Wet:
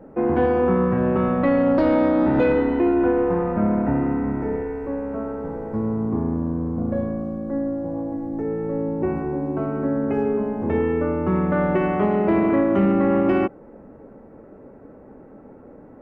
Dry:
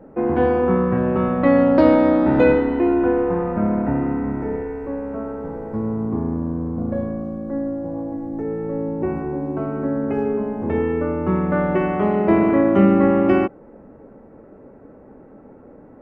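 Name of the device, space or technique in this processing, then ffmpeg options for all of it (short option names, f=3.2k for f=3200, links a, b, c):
soft clipper into limiter: -af "asoftclip=type=tanh:threshold=-6dB,alimiter=limit=-11dB:level=0:latency=1:release=89"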